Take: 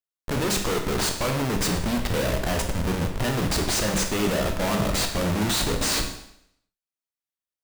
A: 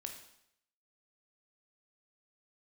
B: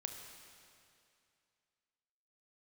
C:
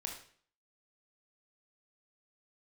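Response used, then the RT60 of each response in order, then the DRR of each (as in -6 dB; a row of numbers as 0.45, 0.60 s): A; 0.75, 2.5, 0.50 s; 3.5, 3.5, 1.0 dB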